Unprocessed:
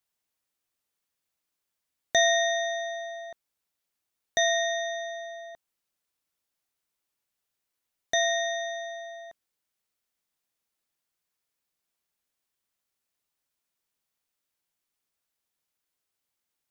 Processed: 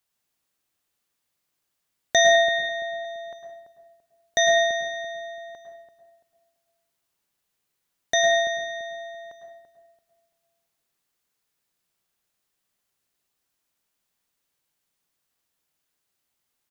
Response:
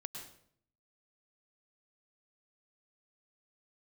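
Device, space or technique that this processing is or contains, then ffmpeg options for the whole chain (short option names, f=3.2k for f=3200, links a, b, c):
bathroom: -filter_complex "[1:a]atrim=start_sample=2205[a];[0:a][a]afir=irnorm=-1:irlink=0,asettb=1/sr,asplit=3[b][c][d];[b]atrim=end=2.354[e];[c]atrim=start=2.35:end=3.05,asetpts=PTS-STARTPTS,afade=t=in:d=0.004:c=qsin,afade=t=out:st=0.696:d=0.004:c=qsin,lowpass=f=5.2k:w=0.5412,lowpass=f=5.2k:w=1.3066[f];[d]atrim=start=3.046[g];[e][f]acrossfade=d=0.004:c1=hsin:c2=qsin[h];[h][g]acrossfade=d=0.004:c1=qsin:c2=hsin,asplit=2[i][j];[j]adelay=337,lowpass=f=810:p=1,volume=-8dB,asplit=2[k][l];[l]adelay=337,lowpass=f=810:p=1,volume=0.35,asplit=2[m][n];[n]adelay=337,lowpass=f=810:p=1,volume=0.35,asplit=2[o][p];[p]adelay=337,lowpass=f=810:p=1,volume=0.35[q];[i][k][m][o][q]amix=inputs=5:normalize=0,volume=8dB"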